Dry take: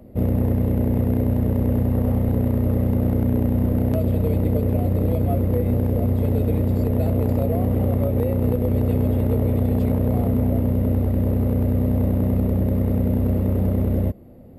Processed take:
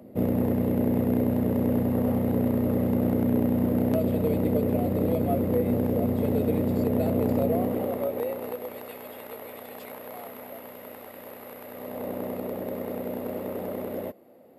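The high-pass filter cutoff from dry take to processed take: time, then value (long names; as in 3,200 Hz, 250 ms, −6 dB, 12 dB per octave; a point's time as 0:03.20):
0:07.49 180 Hz
0:07.86 370 Hz
0:08.93 1,100 Hz
0:11.63 1,100 Hz
0:12.11 480 Hz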